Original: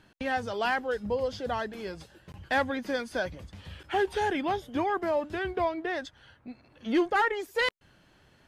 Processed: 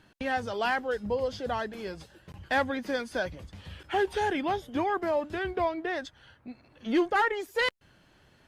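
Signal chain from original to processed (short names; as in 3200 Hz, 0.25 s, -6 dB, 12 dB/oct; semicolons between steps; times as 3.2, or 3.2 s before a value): Opus 64 kbps 48000 Hz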